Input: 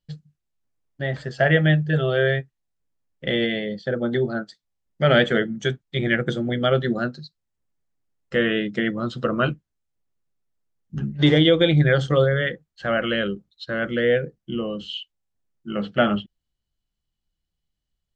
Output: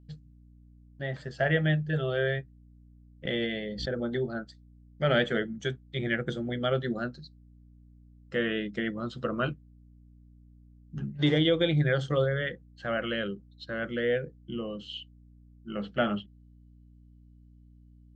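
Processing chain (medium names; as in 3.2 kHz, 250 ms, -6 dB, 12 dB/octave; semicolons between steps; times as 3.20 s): hum 60 Hz, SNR 23 dB; 3.25–4.10 s: swell ahead of each attack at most 65 dB/s; trim -8 dB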